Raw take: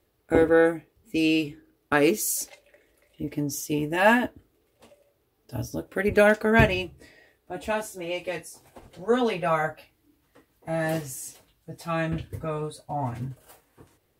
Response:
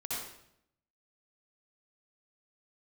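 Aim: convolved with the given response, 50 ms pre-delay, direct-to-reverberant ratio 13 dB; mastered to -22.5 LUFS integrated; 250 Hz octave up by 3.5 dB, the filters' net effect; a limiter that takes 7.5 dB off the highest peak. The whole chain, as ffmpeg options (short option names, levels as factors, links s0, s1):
-filter_complex "[0:a]equalizer=f=250:t=o:g=4.5,alimiter=limit=0.282:level=0:latency=1,asplit=2[s0][s1];[1:a]atrim=start_sample=2205,adelay=50[s2];[s1][s2]afir=irnorm=-1:irlink=0,volume=0.158[s3];[s0][s3]amix=inputs=2:normalize=0,volume=1.41"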